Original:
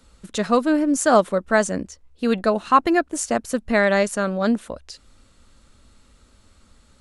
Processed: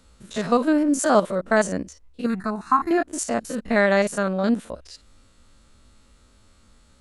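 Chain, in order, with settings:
spectrum averaged block by block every 50 ms
0:02.26–0:02.91: phaser with its sweep stopped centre 1,300 Hz, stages 4

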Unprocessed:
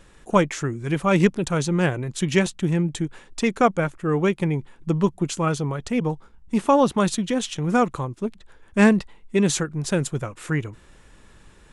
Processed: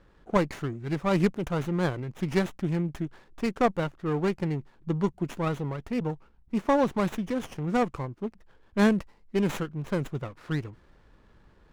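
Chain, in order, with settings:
low-pass that shuts in the quiet parts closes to 2,500 Hz, open at −14 dBFS
windowed peak hold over 9 samples
level −6 dB

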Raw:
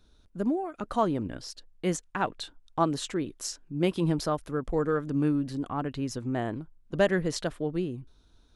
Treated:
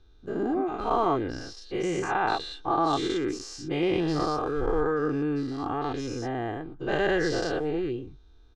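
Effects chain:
every bin's largest magnitude spread in time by 240 ms
high-frequency loss of the air 130 metres
comb filter 2.5 ms, depth 54%
level −4.5 dB

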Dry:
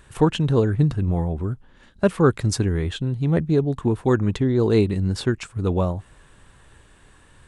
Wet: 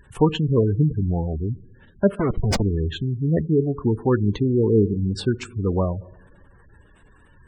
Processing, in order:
0:02.15–0:02.62: comparator with hysteresis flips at −24 dBFS
coupled-rooms reverb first 0.91 s, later 3.1 s, DRR 15 dB
gate on every frequency bin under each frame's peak −20 dB strong

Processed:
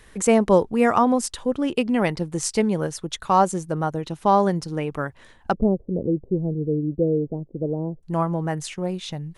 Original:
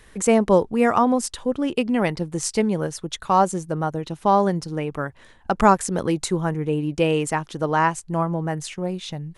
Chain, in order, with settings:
0:05.53–0:08.03: Butterworth low-pass 540 Hz 36 dB per octave

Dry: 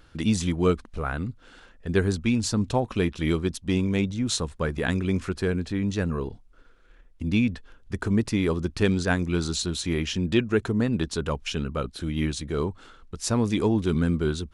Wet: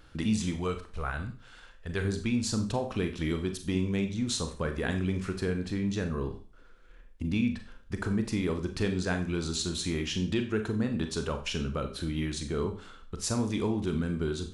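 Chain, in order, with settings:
0:00.56–0:02.05: parametric band 270 Hz −9.5 dB 1.9 octaves
downward compressor 2 to 1, threshold −29 dBFS, peak gain reduction 7.5 dB
four-comb reverb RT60 0.39 s, combs from 29 ms, DRR 6 dB
level −1.5 dB

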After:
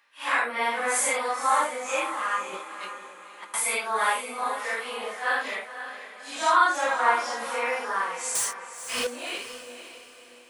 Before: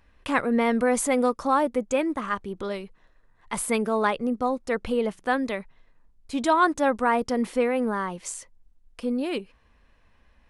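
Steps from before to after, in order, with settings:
random phases in long frames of 200 ms
high-pass filter 1,000 Hz 12 dB per octave
0:02.53–0:03.54: compressor whose output falls as the input rises −48 dBFS, ratio −0.5
0:08.35–0:09.07: leveller curve on the samples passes 5
on a send: feedback delay with all-pass diffusion 523 ms, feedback 40%, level −10.5 dB
on the sum: level +4.5 dB

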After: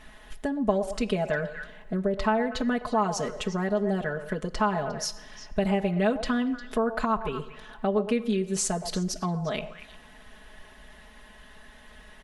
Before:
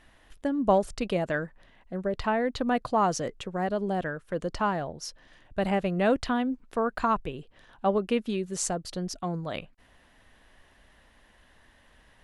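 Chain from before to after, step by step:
echo through a band-pass that steps 118 ms, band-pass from 680 Hz, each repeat 1.4 octaves, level −10 dB
coupled-rooms reverb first 0.62 s, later 2.4 s, DRR 15.5 dB
downward compressor 2.5 to 1, threshold −36 dBFS, peak gain reduction 13 dB
comb filter 4.7 ms, depth 97%
level +5.5 dB

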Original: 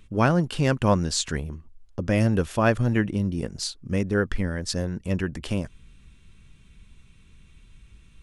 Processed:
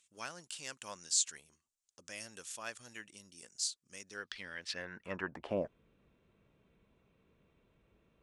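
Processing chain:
dynamic equaliser 7,100 Hz, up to −4 dB, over −44 dBFS, Q 1
band-pass filter sweep 7,400 Hz → 560 Hz, 0:03.98–0:05.65
level +3.5 dB

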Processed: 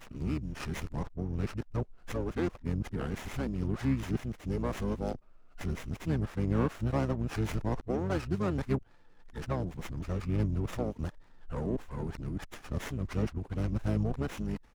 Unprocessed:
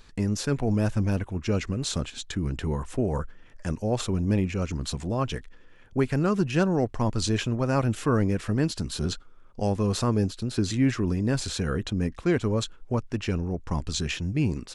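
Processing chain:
played backwards from end to start
pitch-shifted copies added −12 semitones −4 dB, −5 semitones −13 dB
windowed peak hold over 9 samples
level −8 dB

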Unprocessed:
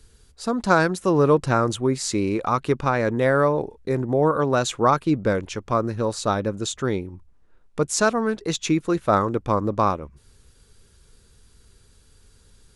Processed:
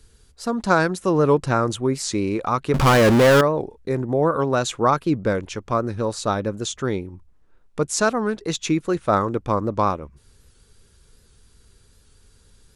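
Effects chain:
0:02.74–0:03.41: power curve on the samples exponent 0.35
wow of a warped record 78 rpm, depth 100 cents

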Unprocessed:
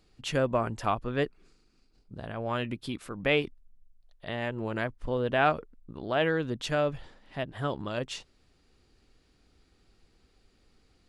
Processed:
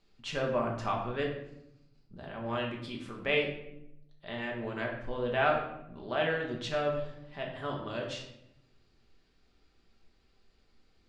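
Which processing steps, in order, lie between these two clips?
low-pass filter 6,000 Hz 12 dB per octave
low-shelf EQ 500 Hz −5 dB
rectangular room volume 220 cubic metres, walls mixed, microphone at 1.2 metres
level −5 dB

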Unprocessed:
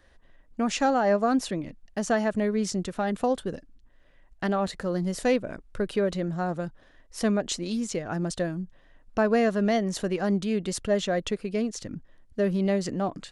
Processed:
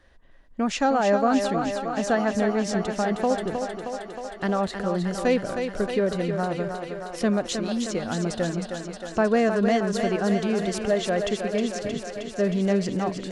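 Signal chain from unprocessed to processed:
high-shelf EQ 9,600 Hz −9.5 dB
on a send: feedback echo with a high-pass in the loop 313 ms, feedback 77%, high-pass 220 Hz, level −6 dB
on the sum: level +1.5 dB

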